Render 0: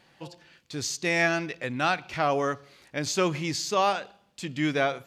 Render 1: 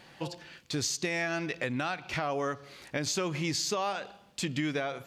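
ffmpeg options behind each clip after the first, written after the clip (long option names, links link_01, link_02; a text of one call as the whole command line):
ffmpeg -i in.wav -af "alimiter=limit=-20.5dB:level=0:latency=1:release=382,acompressor=threshold=-36dB:ratio=3,volume=6dB" out.wav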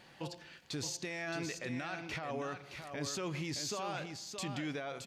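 ffmpeg -i in.wav -af "alimiter=level_in=2.5dB:limit=-24dB:level=0:latency=1:release=14,volume=-2.5dB,aecho=1:1:620:0.447,volume=-4.5dB" out.wav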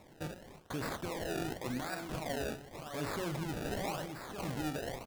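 ffmpeg -i in.wav -filter_complex "[0:a]asplit=2[link_01][link_02];[link_02]adelay=45,volume=-10dB[link_03];[link_01][link_03]amix=inputs=2:normalize=0,acrusher=samples=28:mix=1:aa=0.000001:lfo=1:lforange=28:lforate=0.9,volume=1dB" out.wav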